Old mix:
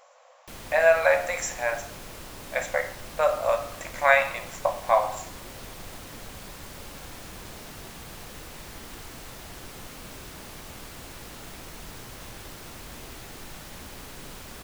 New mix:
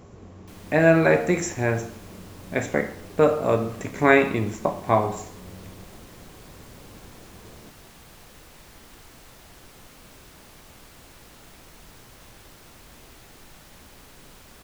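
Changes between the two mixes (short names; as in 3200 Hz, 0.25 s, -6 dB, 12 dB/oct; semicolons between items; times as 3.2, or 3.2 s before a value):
speech: remove brick-wall FIR high-pass 490 Hz; background -6.5 dB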